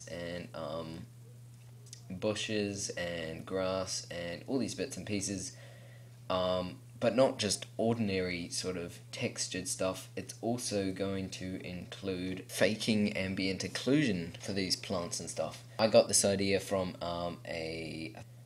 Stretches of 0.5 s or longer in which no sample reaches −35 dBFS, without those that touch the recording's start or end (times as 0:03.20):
0:00.98–0:01.93
0:05.48–0:06.30